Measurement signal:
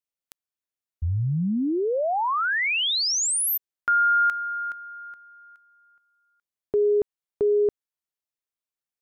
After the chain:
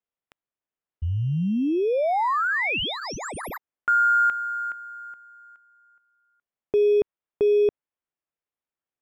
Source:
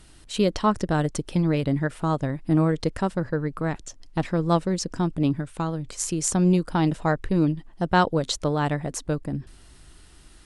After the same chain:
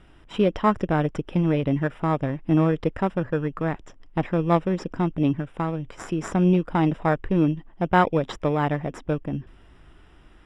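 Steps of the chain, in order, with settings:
in parallel at −9 dB: decimation without filtering 15×
on the sum: Savitzky-Golay smoothing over 25 samples
low-shelf EQ 210 Hz −4 dB

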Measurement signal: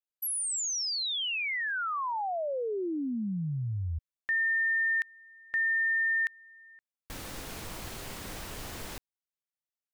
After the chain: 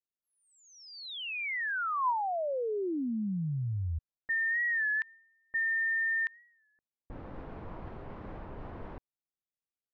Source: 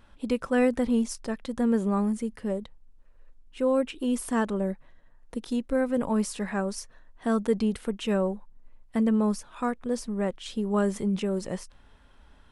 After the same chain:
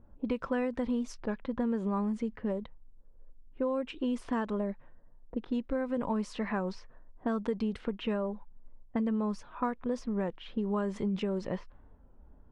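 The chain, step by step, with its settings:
low-pass that shuts in the quiet parts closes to 510 Hz, open at −23 dBFS
low-pass filter 4,200 Hz 12 dB per octave
downward compressor, threshold −28 dBFS
dynamic equaliser 1,000 Hz, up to +6 dB, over −59 dBFS, Q 7.9
wow of a warped record 33 1/3 rpm, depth 100 cents

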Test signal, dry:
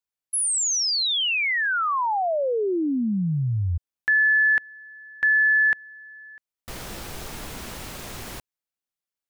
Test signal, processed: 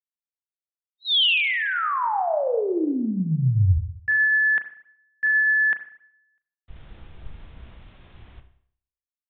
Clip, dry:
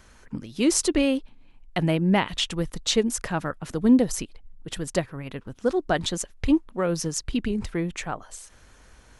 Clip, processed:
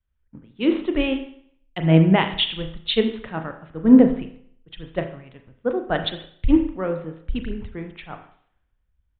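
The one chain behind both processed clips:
spring reverb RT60 1 s, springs 31/37 ms, chirp 65 ms, DRR 5.5 dB
downsampling to 8,000 Hz
multiband upward and downward expander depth 100%
level −1 dB

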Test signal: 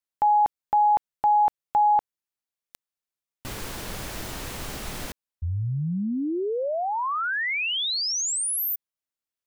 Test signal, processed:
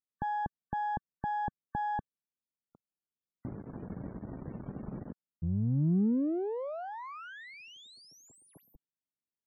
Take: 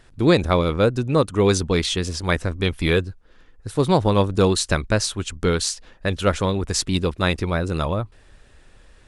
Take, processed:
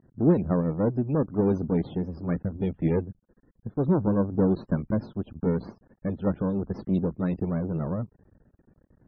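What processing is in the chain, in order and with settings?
half-wave rectification
resonant band-pass 190 Hz, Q 1.3
spectral peaks only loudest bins 64
level +6.5 dB

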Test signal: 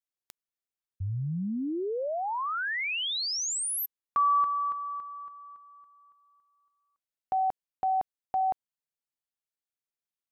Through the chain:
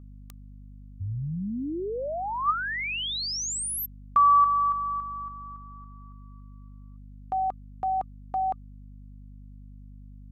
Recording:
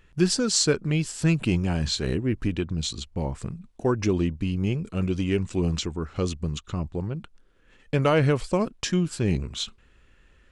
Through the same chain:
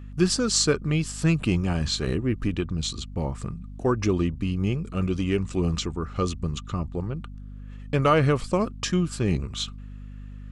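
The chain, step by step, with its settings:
mains hum 50 Hz, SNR 13 dB
hollow resonant body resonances 1,200 Hz, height 12 dB, ringing for 45 ms

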